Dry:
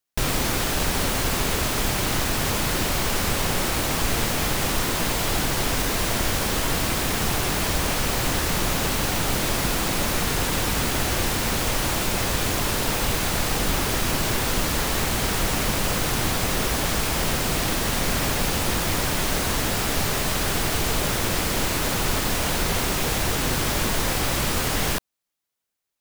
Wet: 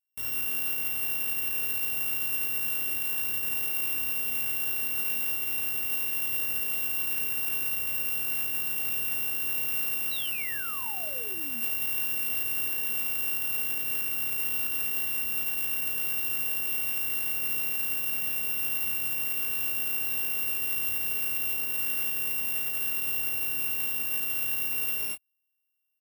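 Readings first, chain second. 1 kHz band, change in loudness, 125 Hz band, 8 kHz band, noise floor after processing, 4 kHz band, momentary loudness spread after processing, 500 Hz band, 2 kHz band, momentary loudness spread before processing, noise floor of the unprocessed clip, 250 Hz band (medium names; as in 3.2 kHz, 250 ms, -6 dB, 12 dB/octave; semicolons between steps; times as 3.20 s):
-20.5 dB, -3.5 dB, -25.0 dB, -7.5 dB, -33 dBFS, -12.5 dB, 1 LU, -21.0 dB, -6.5 dB, 0 LU, -25 dBFS, -22.0 dB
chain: sorted samples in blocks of 16 samples; gated-style reverb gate 180 ms rising, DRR -2.5 dB; painted sound fall, 10.11–11.62 s, 210–4100 Hz -17 dBFS; peaking EQ 5.4 kHz -11.5 dB 1.1 oct; peak limiter -17 dBFS, peak gain reduction 11.5 dB; high-pass 54 Hz; pre-emphasis filter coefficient 0.9; doubling 21 ms -9 dB; trim -1 dB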